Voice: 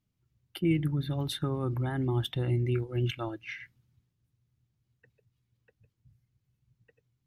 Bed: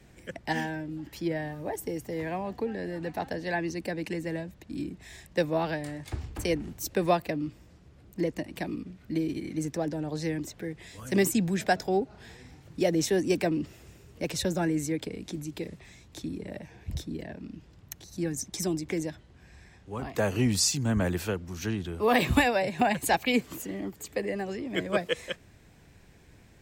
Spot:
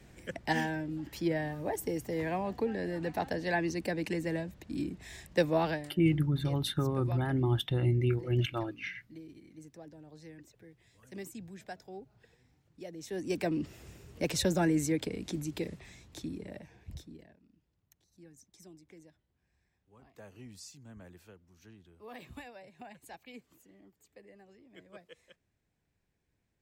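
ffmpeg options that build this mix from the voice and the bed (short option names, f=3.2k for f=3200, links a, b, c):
-filter_complex "[0:a]adelay=5350,volume=0.5dB[a];[1:a]volume=19dB,afade=t=out:st=5.69:d=0.25:silence=0.112202,afade=t=in:st=13.01:d=0.86:silence=0.105925,afade=t=out:st=15.61:d=1.78:silence=0.0595662[b];[a][b]amix=inputs=2:normalize=0"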